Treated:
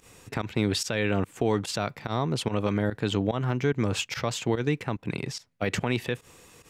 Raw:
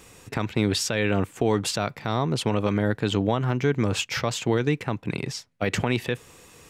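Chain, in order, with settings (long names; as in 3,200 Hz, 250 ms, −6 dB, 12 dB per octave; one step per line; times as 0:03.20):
fake sidechain pumping 145 BPM, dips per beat 1, −17 dB, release 79 ms
level −2.5 dB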